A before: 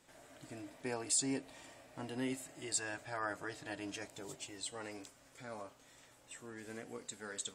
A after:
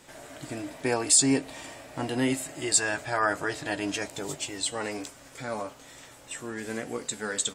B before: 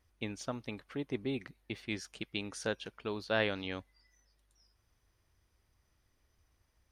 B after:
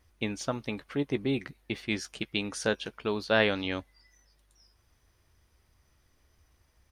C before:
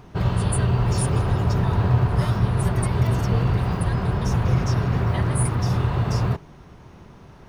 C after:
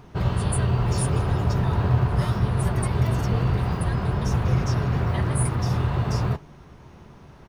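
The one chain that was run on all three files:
doubler 14 ms -12.5 dB; normalise peaks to -9 dBFS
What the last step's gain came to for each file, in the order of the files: +13.0, +6.5, -1.5 dB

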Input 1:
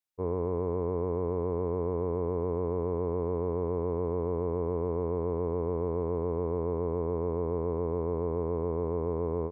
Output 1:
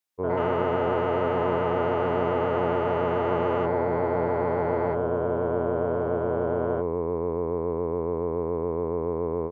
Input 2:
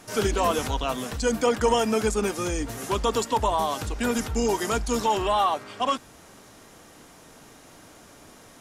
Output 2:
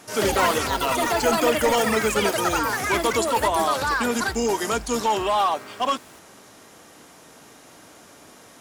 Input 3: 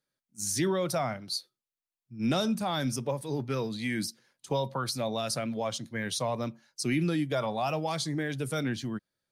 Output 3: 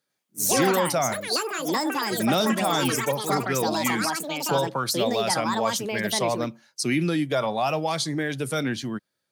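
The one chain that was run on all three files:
HPF 95 Hz 6 dB/oct; low shelf 190 Hz -4 dB; overloaded stage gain 18 dB; echoes that change speed 0.101 s, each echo +6 st, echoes 3; normalise peaks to -9 dBFS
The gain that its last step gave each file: +4.5, +2.5, +6.0 dB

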